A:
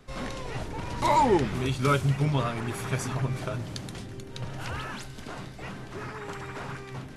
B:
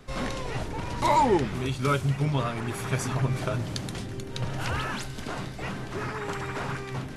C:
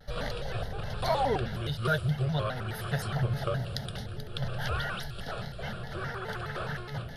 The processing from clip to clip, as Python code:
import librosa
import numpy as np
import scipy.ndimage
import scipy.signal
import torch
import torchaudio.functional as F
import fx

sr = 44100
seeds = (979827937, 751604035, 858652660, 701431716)

y1 = fx.rider(x, sr, range_db=4, speed_s=2.0)
y1 = y1 * librosa.db_to_amplitude(1.0)
y2 = fx.fixed_phaser(y1, sr, hz=1500.0, stages=8)
y2 = fx.vibrato_shape(y2, sr, shape='square', rate_hz=4.8, depth_cents=160.0)